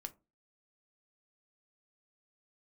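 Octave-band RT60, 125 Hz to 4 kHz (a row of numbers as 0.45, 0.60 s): 0.35, 0.40, 0.30, 0.25, 0.20, 0.10 s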